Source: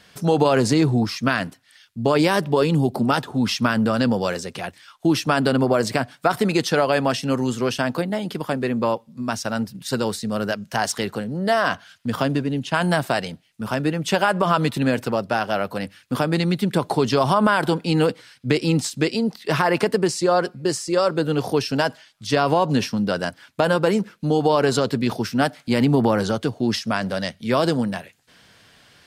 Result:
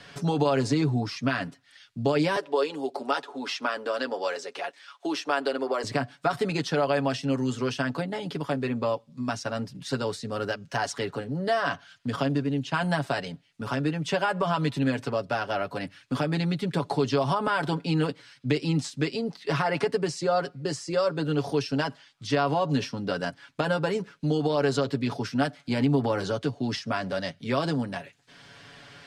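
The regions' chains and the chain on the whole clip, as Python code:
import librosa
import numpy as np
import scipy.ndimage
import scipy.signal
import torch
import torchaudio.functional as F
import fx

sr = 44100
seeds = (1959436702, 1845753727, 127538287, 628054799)

y = fx.chain(x, sr, fx.median_filter(points=3),
    fx.highpass(hz=360.0, slope=24), at=(2.36, 5.84))
y = scipy.signal.sosfilt(scipy.signal.butter(2, 7300.0, 'lowpass', fs=sr, output='sos'), y)
y = y + 0.65 * np.pad(y, (int(7.1 * sr / 1000.0), 0))[:len(y)]
y = fx.band_squash(y, sr, depth_pct=40)
y = F.gain(torch.from_numpy(y), -8.0).numpy()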